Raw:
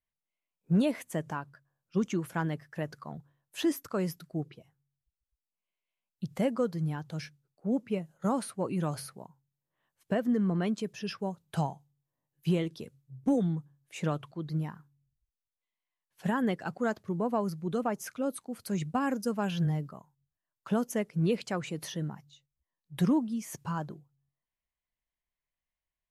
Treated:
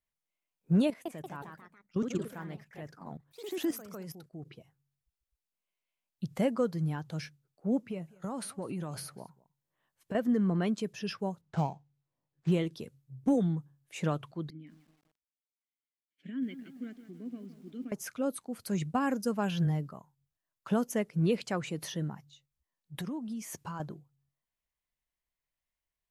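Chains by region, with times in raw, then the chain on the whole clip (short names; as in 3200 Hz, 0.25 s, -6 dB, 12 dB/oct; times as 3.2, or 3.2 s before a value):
0.87–4.47 level quantiser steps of 14 dB + echoes that change speed 0.184 s, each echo +2 st, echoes 3, each echo -6 dB
7.87–10.15 compressor 5:1, threshold -33 dBFS + echo 0.202 s -23 dB
11.41–12.52 median filter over 15 samples + LPF 7500 Hz 24 dB/oct + short-mantissa float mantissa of 6-bit
14.5–17.92 vowel filter i + lo-fi delay 0.166 s, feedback 55%, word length 10-bit, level -12 dB
22.95–23.8 bell 130 Hz -8 dB 0.57 oct + compressor 8:1, threshold -34 dBFS
whole clip: dry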